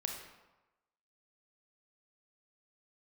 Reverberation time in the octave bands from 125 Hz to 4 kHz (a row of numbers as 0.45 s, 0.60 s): 0.95 s, 0.95 s, 1.0 s, 1.1 s, 0.90 s, 0.70 s